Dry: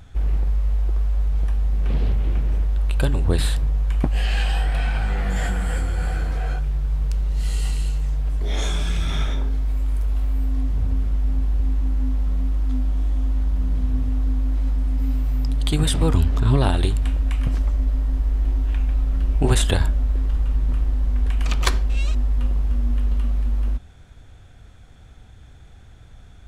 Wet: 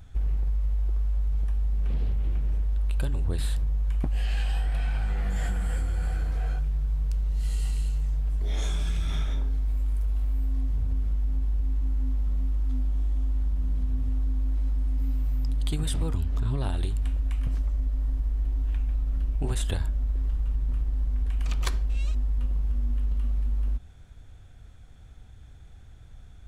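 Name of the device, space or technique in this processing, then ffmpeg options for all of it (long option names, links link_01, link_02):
ASMR close-microphone chain: -af "lowshelf=frequency=120:gain=6.5,acompressor=threshold=-15dB:ratio=6,highshelf=frequency=8000:gain=5,volume=-7.5dB"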